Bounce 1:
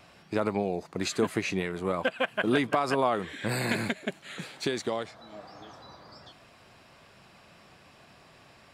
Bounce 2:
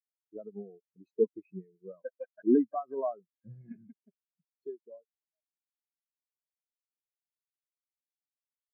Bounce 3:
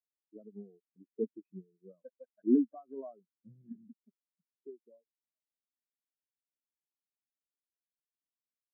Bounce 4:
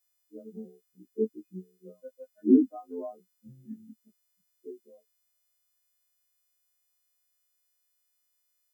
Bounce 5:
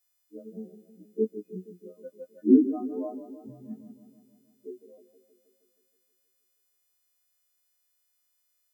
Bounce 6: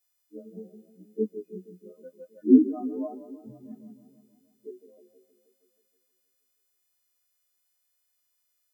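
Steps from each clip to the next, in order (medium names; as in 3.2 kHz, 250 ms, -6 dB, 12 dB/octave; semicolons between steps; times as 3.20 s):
spectral contrast expander 4:1; trim -1.5 dB
band-pass filter 250 Hz, Q 2.2
partials quantised in pitch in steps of 3 st; trim +6.5 dB
modulated delay 158 ms, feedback 65%, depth 83 cents, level -13.5 dB; trim +1.5 dB
flange 0.86 Hz, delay 9 ms, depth 7.1 ms, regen +28%; trim +3 dB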